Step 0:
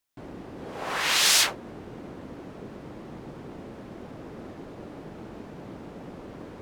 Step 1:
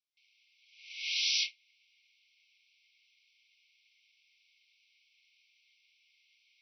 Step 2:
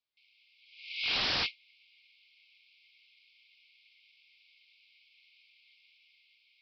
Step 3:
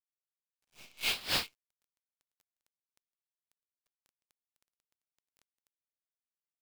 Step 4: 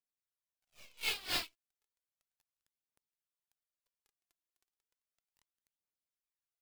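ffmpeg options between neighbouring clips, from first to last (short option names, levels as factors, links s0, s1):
-af "afftfilt=real='re*between(b*sr/4096,2100,6000)':imag='im*between(b*sr/4096,2100,6000)':win_size=4096:overlap=0.75,volume=0.398"
-af "dynaudnorm=f=120:g=11:m=1.41,aresample=11025,aeval=exprs='0.0376*(abs(mod(val(0)/0.0376+3,4)-2)-1)':c=same,aresample=44100,volume=1.41"
-af "acontrast=57,acrusher=bits=5:dc=4:mix=0:aa=0.000001,aeval=exprs='val(0)*pow(10,-22*(0.5-0.5*cos(2*PI*3.7*n/s))/20)':c=same,volume=0.596"
-af "aphaser=in_gain=1:out_gain=1:delay=3.1:decay=0.54:speed=0.34:type=triangular,volume=0.531"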